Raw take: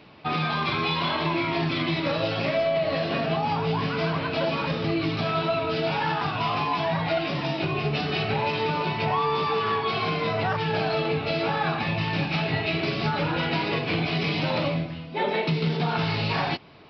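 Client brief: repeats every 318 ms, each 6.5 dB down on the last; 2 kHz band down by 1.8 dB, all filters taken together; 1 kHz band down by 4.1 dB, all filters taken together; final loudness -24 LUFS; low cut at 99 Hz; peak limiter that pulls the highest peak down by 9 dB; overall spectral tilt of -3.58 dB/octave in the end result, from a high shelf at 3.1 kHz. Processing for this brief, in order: high-pass 99 Hz; peaking EQ 1 kHz -5 dB; peaking EQ 2 kHz -3.5 dB; treble shelf 3.1 kHz +5.5 dB; peak limiter -22 dBFS; feedback delay 318 ms, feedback 47%, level -6.5 dB; trim +5 dB

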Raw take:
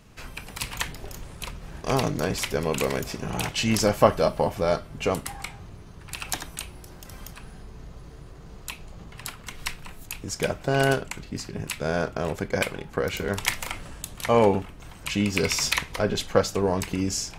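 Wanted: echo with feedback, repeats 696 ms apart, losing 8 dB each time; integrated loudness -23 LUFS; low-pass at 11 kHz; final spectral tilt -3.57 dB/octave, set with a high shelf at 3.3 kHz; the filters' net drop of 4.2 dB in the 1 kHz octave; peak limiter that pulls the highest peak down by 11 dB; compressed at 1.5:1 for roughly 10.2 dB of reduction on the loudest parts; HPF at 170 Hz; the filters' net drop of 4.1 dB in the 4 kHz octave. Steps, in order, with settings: high-pass 170 Hz; low-pass 11 kHz; peaking EQ 1 kHz -5.5 dB; treble shelf 3.3 kHz +3.5 dB; peaking EQ 4 kHz -8.5 dB; compression 1.5:1, threshold -44 dBFS; peak limiter -24.5 dBFS; feedback delay 696 ms, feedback 40%, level -8 dB; trim +16 dB

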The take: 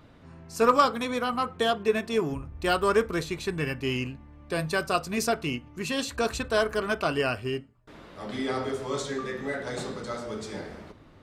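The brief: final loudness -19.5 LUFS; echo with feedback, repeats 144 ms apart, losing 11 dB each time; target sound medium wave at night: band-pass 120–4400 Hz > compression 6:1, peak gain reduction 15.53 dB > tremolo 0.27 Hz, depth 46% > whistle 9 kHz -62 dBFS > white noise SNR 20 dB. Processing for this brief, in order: band-pass 120–4400 Hz; feedback delay 144 ms, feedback 28%, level -11 dB; compression 6:1, threshold -31 dBFS; tremolo 0.27 Hz, depth 46%; whistle 9 kHz -62 dBFS; white noise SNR 20 dB; trim +19 dB

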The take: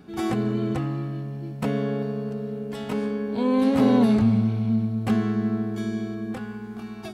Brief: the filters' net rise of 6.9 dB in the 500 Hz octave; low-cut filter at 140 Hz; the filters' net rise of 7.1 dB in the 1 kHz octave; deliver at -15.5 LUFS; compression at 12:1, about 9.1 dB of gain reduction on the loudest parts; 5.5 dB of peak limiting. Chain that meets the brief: high-pass 140 Hz; peaking EQ 500 Hz +7 dB; peaking EQ 1 kHz +6.5 dB; compression 12:1, threshold -20 dBFS; trim +12.5 dB; peak limiter -6 dBFS

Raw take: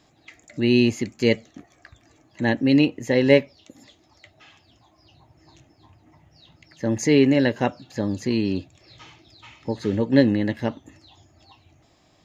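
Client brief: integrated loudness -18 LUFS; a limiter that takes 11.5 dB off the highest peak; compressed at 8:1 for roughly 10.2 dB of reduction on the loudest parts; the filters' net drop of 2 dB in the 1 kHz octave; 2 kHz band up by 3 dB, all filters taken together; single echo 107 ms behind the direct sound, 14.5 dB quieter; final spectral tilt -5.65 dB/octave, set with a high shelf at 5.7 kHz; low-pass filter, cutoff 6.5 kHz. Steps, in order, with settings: low-pass 6.5 kHz; peaking EQ 1 kHz -3.5 dB; peaking EQ 2 kHz +5 dB; treble shelf 5.7 kHz -5 dB; compression 8:1, threshold -20 dBFS; peak limiter -22 dBFS; delay 107 ms -14.5 dB; trim +15.5 dB

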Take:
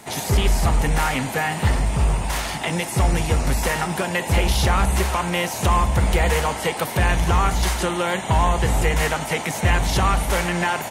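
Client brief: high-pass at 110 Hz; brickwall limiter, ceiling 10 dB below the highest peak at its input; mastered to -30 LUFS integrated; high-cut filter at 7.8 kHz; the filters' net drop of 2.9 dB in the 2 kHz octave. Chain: high-pass 110 Hz; low-pass 7.8 kHz; peaking EQ 2 kHz -3.5 dB; trim -2.5 dB; peak limiter -20.5 dBFS

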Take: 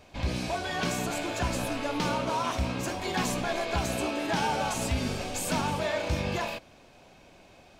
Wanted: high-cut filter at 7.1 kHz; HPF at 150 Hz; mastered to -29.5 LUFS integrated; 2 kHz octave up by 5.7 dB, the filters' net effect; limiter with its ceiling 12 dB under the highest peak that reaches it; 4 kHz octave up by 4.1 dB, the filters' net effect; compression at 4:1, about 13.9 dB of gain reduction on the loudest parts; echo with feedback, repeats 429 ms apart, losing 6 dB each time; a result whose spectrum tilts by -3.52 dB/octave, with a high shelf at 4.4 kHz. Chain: high-pass 150 Hz; low-pass 7.1 kHz; peaking EQ 2 kHz +7 dB; peaking EQ 4 kHz +5.5 dB; treble shelf 4.4 kHz -4.5 dB; compression 4:1, threshold -41 dBFS; peak limiter -38.5 dBFS; feedback delay 429 ms, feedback 50%, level -6 dB; trim +16 dB

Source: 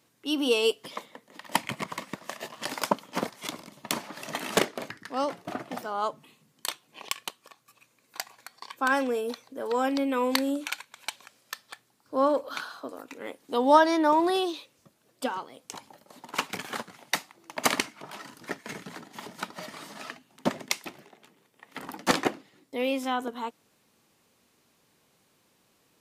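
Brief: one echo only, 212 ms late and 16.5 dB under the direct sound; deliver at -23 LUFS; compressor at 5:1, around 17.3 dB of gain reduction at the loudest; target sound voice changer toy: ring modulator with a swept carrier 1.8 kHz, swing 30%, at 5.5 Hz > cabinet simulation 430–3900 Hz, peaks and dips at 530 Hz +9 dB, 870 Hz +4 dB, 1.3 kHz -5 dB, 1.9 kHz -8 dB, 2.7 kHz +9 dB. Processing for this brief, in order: compression 5:1, threshold -34 dBFS; delay 212 ms -16.5 dB; ring modulator with a swept carrier 1.8 kHz, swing 30%, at 5.5 Hz; cabinet simulation 430–3900 Hz, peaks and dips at 530 Hz +9 dB, 870 Hz +4 dB, 1.3 kHz -5 dB, 1.9 kHz -8 dB, 2.7 kHz +9 dB; trim +17 dB

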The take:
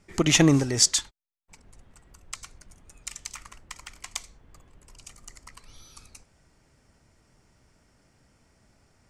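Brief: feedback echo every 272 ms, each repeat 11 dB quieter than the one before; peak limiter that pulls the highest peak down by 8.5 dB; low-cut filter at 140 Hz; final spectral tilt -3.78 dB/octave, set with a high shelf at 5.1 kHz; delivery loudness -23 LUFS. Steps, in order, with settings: high-pass 140 Hz; treble shelf 5.1 kHz -8 dB; peak limiter -13.5 dBFS; feedback delay 272 ms, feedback 28%, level -11 dB; trim +5 dB

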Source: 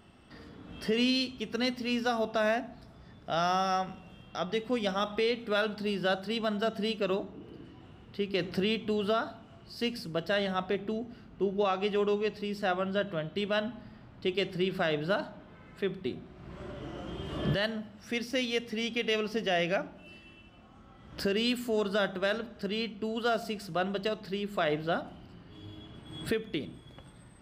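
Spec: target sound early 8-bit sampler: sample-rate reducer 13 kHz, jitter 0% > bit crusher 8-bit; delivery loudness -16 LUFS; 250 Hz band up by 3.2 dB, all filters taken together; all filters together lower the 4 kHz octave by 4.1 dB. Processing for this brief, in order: peaking EQ 250 Hz +4 dB; peaking EQ 4 kHz -6 dB; sample-rate reducer 13 kHz, jitter 0%; bit crusher 8-bit; trim +15 dB

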